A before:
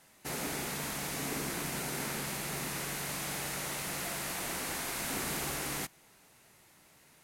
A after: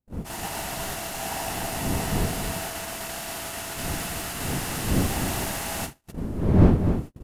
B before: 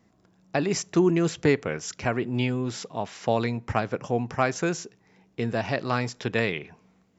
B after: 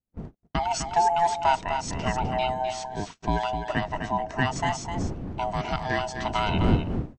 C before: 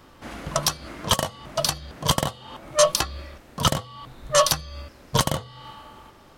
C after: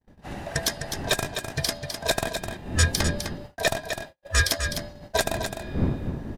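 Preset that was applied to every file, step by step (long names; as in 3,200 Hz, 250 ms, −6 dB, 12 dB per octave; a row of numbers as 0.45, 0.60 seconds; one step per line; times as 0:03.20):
neighbouring bands swapped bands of 500 Hz
wind on the microphone 220 Hz −32 dBFS
on a send: single-tap delay 255 ms −7.5 dB
on the sum: noise gate −36 dBFS, range −48 dB
loudness normalisation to −27 LKFS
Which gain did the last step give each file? +4.5, −1.5, −3.0 decibels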